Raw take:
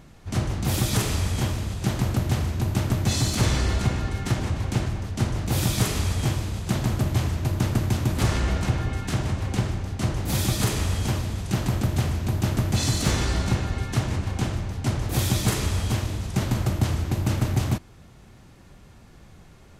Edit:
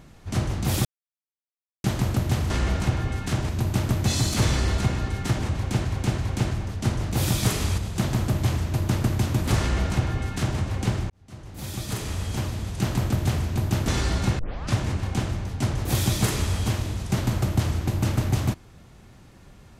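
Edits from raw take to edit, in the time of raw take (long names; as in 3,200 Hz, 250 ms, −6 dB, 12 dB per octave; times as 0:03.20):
0:00.85–0:01.84: silence
0:04.57–0:04.90: repeat, 3 plays
0:06.13–0:06.49: remove
0:08.31–0:09.30: duplicate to 0:02.50
0:09.81–0:11.60: fade in linear
0:12.59–0:13.12: remove
0:13.63: tape start 0.38 s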